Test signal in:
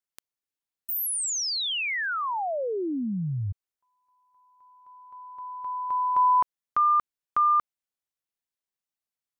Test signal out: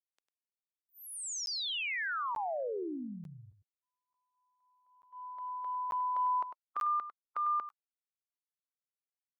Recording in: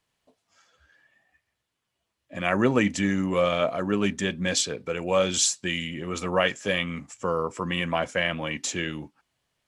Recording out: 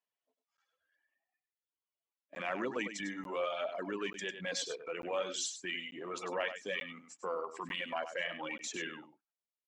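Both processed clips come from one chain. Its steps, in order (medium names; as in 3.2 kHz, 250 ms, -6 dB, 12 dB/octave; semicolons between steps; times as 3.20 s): coarse spectral quantiser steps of 15 dB; low-pass 7.2 kHz 12 dB/octave; gate -48 dBFS, range -15 dB; reverb removal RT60 1.6 s; high-pass 380 Hz 12 dB/octave; treble shelf 4.6 kHz -6 dB; transient shaper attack -7 dB, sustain -1 dB; compression 2:1, threshold -39 dBFS; on a send: delay 100 ms -10 dB; on the sum: crackling interface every 0.89 s, samples 512, zero, from 0.57 s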